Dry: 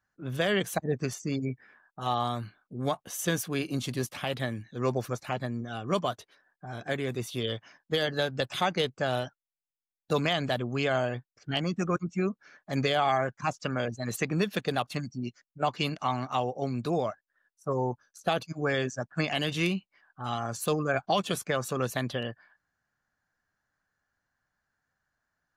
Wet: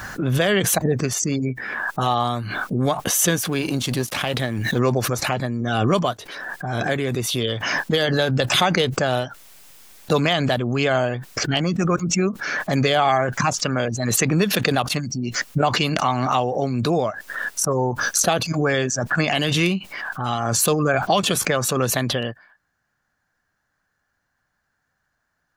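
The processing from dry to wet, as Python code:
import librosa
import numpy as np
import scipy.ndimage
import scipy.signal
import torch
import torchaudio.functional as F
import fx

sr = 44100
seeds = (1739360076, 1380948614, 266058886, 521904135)

y = fx.law_mismatch(x, sr, coded='A', at=(3.44, 4.79))
y = fx.pre_swell(y, sr, db_per_s=26.0)
y = F.gain(torch.from_numpy(y), 7.5).numpy()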